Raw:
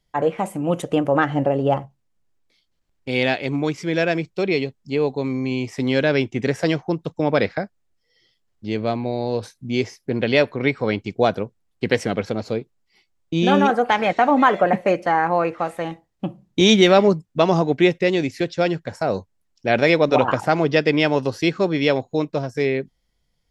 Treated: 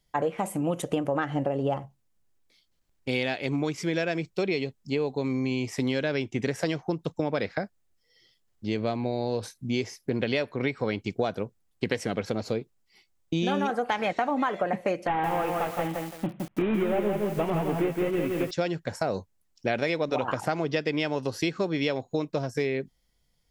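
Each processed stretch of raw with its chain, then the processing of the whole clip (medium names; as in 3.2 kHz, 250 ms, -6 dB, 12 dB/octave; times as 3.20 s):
15.07–18.51 s: CVSD coder 16 kbps + doubling 19 ms -11.5 dB + bit-crushed delay 166 ms, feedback 35%, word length 7-bit, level -4 dB
whole clip: treble shelf 7.4 kHz +8 dB; compression, threshold -22 dBFS; trim -1.5 dB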